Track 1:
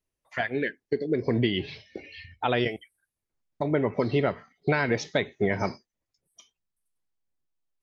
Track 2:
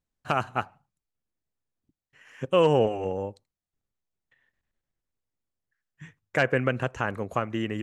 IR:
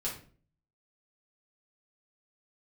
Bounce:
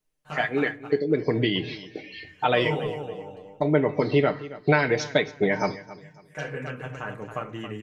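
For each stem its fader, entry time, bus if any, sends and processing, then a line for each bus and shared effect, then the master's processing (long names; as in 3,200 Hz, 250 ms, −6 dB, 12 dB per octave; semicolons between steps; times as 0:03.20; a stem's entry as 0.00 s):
+1.5 dB, 0.00 s, send −16.5 dB, echo send −16 dB, parametric band 92 Hz −4.5 dB 1.7 octaves
−9.0 dB, 0.00 s, send −6 dB, echo send −8 dB, automatic ducking −17 dB, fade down 0.25 s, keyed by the first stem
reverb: on, RT60 0.45 s, pre-delay 5 ms
echo: repeating echo 274 ms, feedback 30%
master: mains-hum notches 50/100 Hz; comb filter 6.6 ms, depth 52%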